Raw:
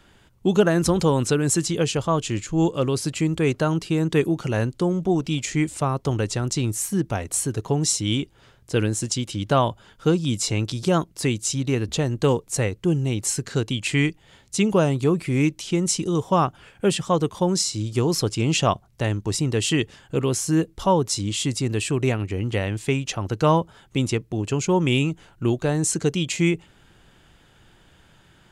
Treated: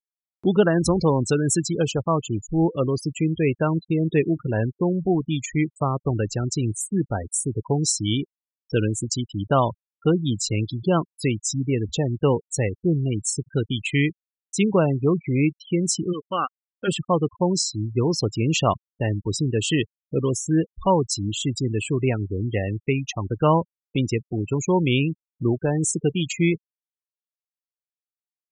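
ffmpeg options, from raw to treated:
-filter_complex "[0:a]asplit=3[a][b][c];[a]afade=t=out:st=16.12:d=0.02[d];[b]highpass=400,equalizer=f=410:t=q:w=4:g=-8,equalizer=f=650:t=q:w=4:g=-9,equalizer=f=940:t=q:w=4:g=-10,equalizer=f=1.4k:t=q:w=4:g=5,equalizer=f=2k:t=q:w=4:g=5,equalizer=f=3.1k:t=q:w=4:g=9,lowpass=f=3.3k:w=0.5412,lowpass=f=3.3k:w=1.3066,afade=t=in:st=16.12:d=0.02,afade=t=out:st=16.87:d=0.02[e];[c]afade=t=in:st=16.87:d=0.02[f];[d][e][f]amix=inputs=3:normalize=0,afftfilt=real='re*gte(hypot(re,im),0.0708)':imag='im*gte(hypot(re,im),0.0708)':win_size=1024:overlap=0.75,acompressor=mode=upward:threshold=-28dB:ratio=2.5"

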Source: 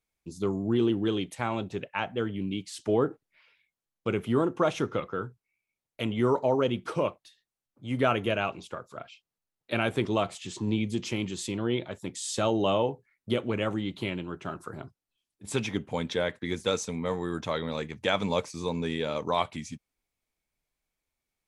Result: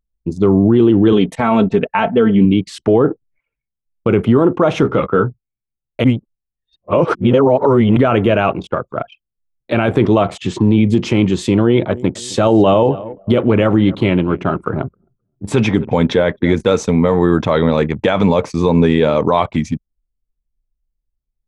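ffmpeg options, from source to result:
-filter_complex "[0:a]asettb=1/sr,asplit=3[a][b][c];[a]atrim=end=1.124[d];[b]atrim=start=1.12:end=2.45,asetpts=PTS-STARTPTS,afade=t=in:d=0.004:c=qsin,afade=t=out:st=1.326:d=0.004:c=qsin,aecho=1:1:4.5:0.66,atrim=end_sample=58653[e];[c]atrim=start=2.446[f];[d][e]acrossfade=d=0.004:c1=hsin:c2=qsin[g];[g][f]acrossfade=d=0.004:c1=qsin:c2=hsin,asettb=1/sr,asplit=3[h][i][j];[h]atrim=end=4.814[k];[i]atrim=start=4.81:end=5.24,asetpts=PTS-STARTPTS,afade=t=in:d=0.004:c=qsin,afade=t=out:st=0.426:d=0.004:c=qsin,asplit=2[l][m];[m]adelay=15,volume=-7dB[n];[l][n]amix=inputs=2:normalize=0,atrim=end_sample=18963[o];[j]atrim=start=5.236[p];[k][o]acrossfade=d=0.004:c1=hsin:c2=qsin[q];[q][p]acrossfade=d=0.004:c1=qsin:c2=hsin,asettb=1/sr,asplit=3[r][s][t];[r]atrim=end=11.494[u];[s]atrim=start=11.49:end=16.55,asetpts=PTS-STARTPTS,afade=t=in:d=0.004:c=qsin,afade=t=out:st=5.056:d=0.004:c=qsin,aecho=1:1:263|526|789:0.0794|0.0302|0.0115,atrim=end_sample=223146[v];[t]atrim=start=16.546[w];[u][v]acrossfade=d=0.004:c1=hsin:c2=qsin[x];[x][w]acrossfade=d=0.004:c1=qsin:c2=hsin,asplit=3[y][z][aa];[y]atrim=end=6.042[ab];[z]atrim=start=6.038:end=7.972,asetpts=PTS-STARTPTS,areverse[ac];[aa]atrim=start=7.968[ad];[ab][ac]acrossfade=d=0.004:c1=hsin:c2=hsin[ae];[ae][ad]acrossfade=d=0.004:c1=hsin:c2=hsin,anlmdn=0.0251,lowpass=f=1.2k:p=1,alimiter=level_in=23dB:limit=-1dB:release=50:level=0:latency=1,volume=-2dB"

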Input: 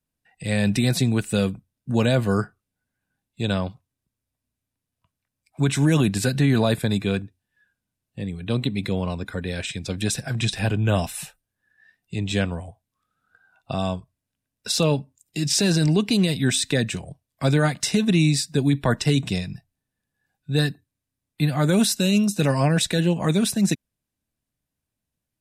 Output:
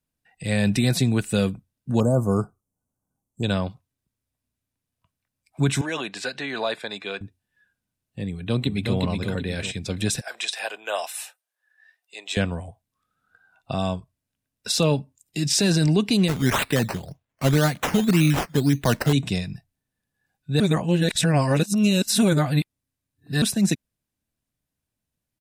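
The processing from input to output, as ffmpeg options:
-filter_complex "[0:a]asettb=1/sr,asplit=3[a][b][c];[a]atrim=end=2.004[d];[b]atrim=start=2:end=3.43,asetpts=PTS-STARTPTS,afade=t=in:d=0.004:c=qsin,afade=t=out:st=1.426:d=0.004:c=qsin,asuperstop=centerf=2700:order=12:qfactor=0.61[e];[c]atrim=start=3.426[f];[d][e]acrossfade=d=0.004:c1=hsin:c2=qsin[g];[g][f]acrossfade=d=0.004:c1=qsin:c2=hsin,asettb=1/sr,asplit=3[h][i][j];[h]atrim=end=5.814[k];[i]atrim=start=5.81:end=7.21,asetpts=PTS-STARTPTS,afade=t=in:d=0.004:c=qsin,afade=t=out:st=1.396:d=0.004:c=qsin,highpass=600,lowpass=4.8k[l];[j]atrim=start=7.206[m];[k][l]acrossfade=d=0.004:c1=hsin:c2=qsin[n];[n][m]acrossfade=d=0.004:c1=qsin:c2=hsin,asplit=2[o][p];[p]afade=t=in:st=8.28:d=0.01,afade=t=out:st=8.97:d=0.01,aecho=0:1:370|740|1110|1480|1850:0.668344|0.23392|0.0818721|0.0286552|0.0100293[q];[o][q]amix=inputs=2:normalize=0,asettb=1/sr,asplit=3[r][s][t];[r]atrim=end=10.214[u];[s]atrim=start=10.21:end=12.37,asetpts=PTS-STARTPTS,afade=t=in:d=0.004:c=qsin,afade=t=out:st=2.156:d=0.004:c=qsin,highpass=f=550:w=0.5412,highpass=f=550:w=1.3066[v];[t]atrim=start=12.366[w];[u][v]acrossfade=d=0.004:c1=hsin:c2=qsin[x];[x][w]acrossfade=d=0.004:c1=qsin:c2=hsin,asettb=1/sr,asplit=3[y][z][aa];[y]atrim=end=16.284[ab];[z]atrim=start=16.28:end=19.13,asetpts=PTS-STARTPTS,afade=t=in:d=0.004:c=qsin,afade=t=out:st=2.846:d=0.004:c=qsin,acrusher=samples=10:mix=1:aa=0.000001:lfo=1:lforange=6:lforate=1.9[ac];[aa]atrim=start=19.126[ad];[ab][ac]acrossfade=d=0.004:c1=hsin:c2=qsin[ae];[ae][ad]acrossfade=d=0.004:c1=qsin:c2=hsin,asplit=3[af][ag][ah];[af]atrim=end=20.602[ai];[ag]atrim=start=20.598:end=23.422,asetpts=PTS-STARTPTS,areverse[aj];[ah]atrim=start=23.418[ak];[ai][aj]acrossfade=d=0.004:c1=hsin:c2=hsin[al];[al][ak]acrossfade=d=0.004:c1=hsin:c2=hsin"

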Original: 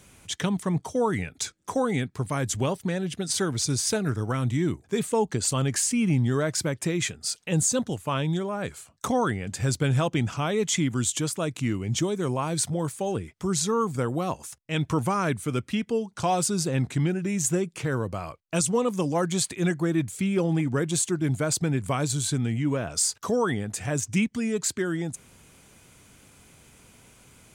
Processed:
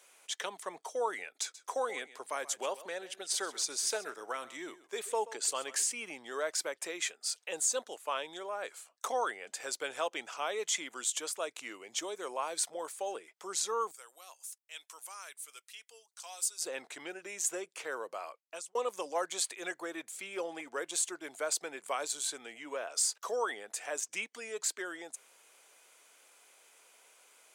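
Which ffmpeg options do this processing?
-filter_complex "[0:a]asettb=1/sr,asplit=3[a][b][c];[a]atrim=end=1.414[d];[b]atrim=start=1.41:end=5.84,asetpts=PTS-STARTPTS,afade=t=in:d=0.004:c=qsin,afade=t=out:st=4.426:d=0.004:c=qsin,aecho=1:1:131:0.141,atrim=end_sample=195363[e];[c]atrim=start=5.836[f];[d][e]acrossfade=d=0.004:c1=hsin:c2=qsin[g];[g][f]acrossfade=d=0.004:c1=qsin:c2=hsin,asettb=1/sr,asplit=3[h][i][j];[h]atrim=end=13.914[k];[i]atrim=start=13.91:end=16.62,asetpts=PTS-STARTPTS,afade=t=in:d=0.004:c=qsin,afade=t=out:st=2.706:d=0.004:c=qsin,aderivative[l];[j]atrim=start=16.616[m];[k][l]acrossfade=d=0.004:c1=hsin:c2=qsin[n];[n][m]acrossfade=d=0.004:c1=qsin:c2=hsin,asplit=2[o][p];[o]atrim=end=18.75,asetpts=PTS-STARTPTS,afade=t=out:st=18.24:d=0.51[q];[p]atrim=start=18.75,asetpts=PTS-STARTPTS,afade=t=in:d=0.004:c=hsin[r];[q][r]concat=n=2:v=0:a=1,highpass=f=480:w=0.5412,highpass=f=480:w=1.3066,volume=-5.5dB"

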